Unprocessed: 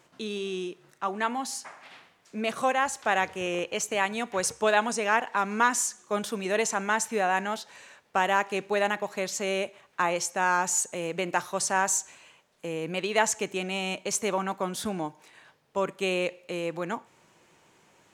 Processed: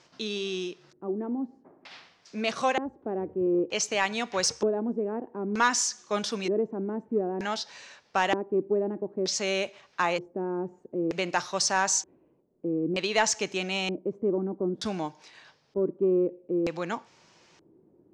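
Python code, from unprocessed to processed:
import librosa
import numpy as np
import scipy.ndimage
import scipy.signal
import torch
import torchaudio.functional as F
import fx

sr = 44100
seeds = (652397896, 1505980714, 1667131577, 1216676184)

y = fx.filter_lfo_lowpass(x, sr, shape='square', hz=0.54, low_hz=340.0, high_hz=5200.0, q=3.2)
y = 10.0 ** (-9.5 / 20.0) * np.tanh(y / 10.0 ** (-9.5 / 20.0))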